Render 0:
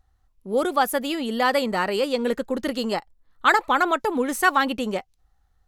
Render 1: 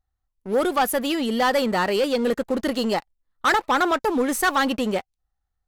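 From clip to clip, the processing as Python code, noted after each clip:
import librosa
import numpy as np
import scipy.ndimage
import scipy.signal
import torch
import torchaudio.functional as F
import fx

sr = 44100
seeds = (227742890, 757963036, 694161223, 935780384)

y = fx.leveller(x, sr, passes=3)
y = F.gain(torch.from_numpy(y), -8.0).numpy()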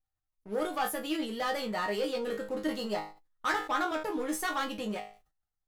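y = fx.resonator_bank(x, sr, root=44, chord='fifth', decay_s=0.22)
y = fx.sustainer(y, sr, db_per_s=130.0)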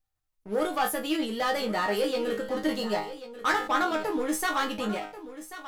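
y = x + 10.0 ** (-13.5 / 20.0) * np.pad(x, (int(1087 * sr / 1000.0), 0))[:len(x)]
y = F.gain(torch.from_numpy(y), 4.5).numpy()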